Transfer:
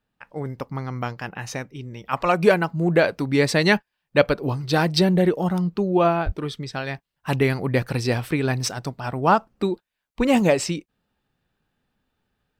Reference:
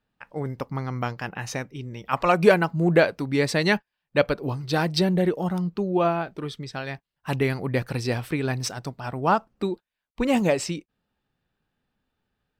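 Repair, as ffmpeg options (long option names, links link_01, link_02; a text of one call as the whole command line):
ffmpeg -i in.wav -filter_complex "[0:a]asplit=3[link_01][link_02][link_03];[link_01]afade=type=out:start_time=6.25:duration=0.02[link_04];[link_02]highpass=frequency=140:width=0.5412,highpass=frequency=140:width=1.3066,afade=type=in:start_time=6.25:duration=0.02,afade=type=out:start_time=6.37:duration=0.02[link_05];[link_03]afade=type=in:start_time=6.37:duration=0.02[link_06];[link_04][link_05][link_06]amix=inputs=3:normalize=0,asetnsamples=nb_out_samples=441:pad=0,asendcmd='3.04 volume volume -3.5dB',volume=0dB" out.wav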